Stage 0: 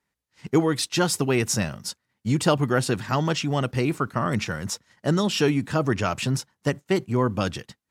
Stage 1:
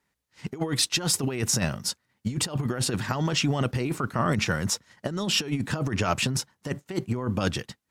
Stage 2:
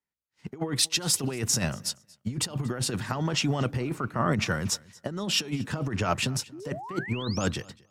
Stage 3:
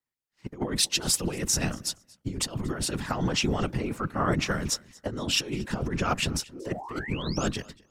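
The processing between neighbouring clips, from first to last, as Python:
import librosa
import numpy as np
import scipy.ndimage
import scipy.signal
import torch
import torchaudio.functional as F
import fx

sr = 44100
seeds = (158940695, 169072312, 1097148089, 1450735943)

y1 = fx.over_compress(x, sr, threshold_db=-25.0, ratio=-0.5)
y2 = fx.spec_paint(y1, sr, seeds[0], shape='rise', start_s=6.52, length_s=0.95, low_hz=280.0, high_hz=7900.0, level_db=-35.0)
y2 = fx.echo_feedback(y2, sr, ms=235, feedback_pct=24, wet_db=-21.0)
y2 = fx.band_widen(y2, sr, depth_pct=40)
y2 = F.gain(torch.from_numpy(y2), -2.0).numpy()
y3 = fx.whisperise(y2, sr, seeds[1])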